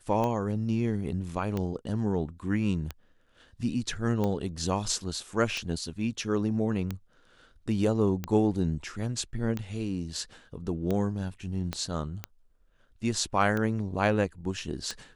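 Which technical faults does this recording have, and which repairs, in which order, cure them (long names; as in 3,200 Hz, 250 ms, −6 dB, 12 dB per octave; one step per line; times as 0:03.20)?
scratch tick 45 rpm −18 dBFS
0:11.73: click −17 dBFS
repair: click removal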